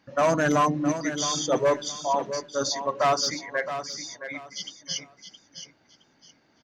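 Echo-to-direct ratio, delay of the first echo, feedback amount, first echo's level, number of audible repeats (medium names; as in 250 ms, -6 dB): -9.5 dB, 667 ms, 24%, -10.0 dB, 3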